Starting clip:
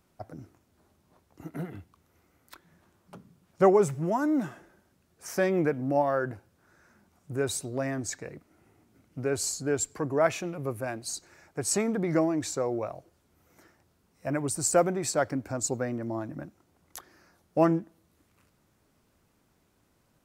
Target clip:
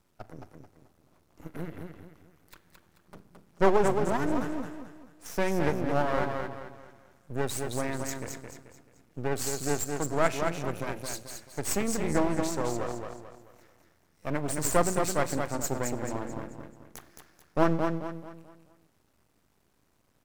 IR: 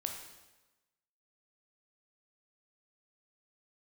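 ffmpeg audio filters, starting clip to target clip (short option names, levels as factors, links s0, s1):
-filter_complex "[0:a]aecho=1:1:218|436|654|872|1090:0.562|0.208|0.077|0.0285|0.0105,aeval=exprs='max(val(0),0)':c=same,asplit=2[s0][s1];[1:a]atrim=start_sample=2205,adelay=41[s2];[s1][s2]afir=irnorm=-1:irlink=0,volume=0.119[s3];[s0][s3]amix=inputs=2:normalize=0,volume=1.19"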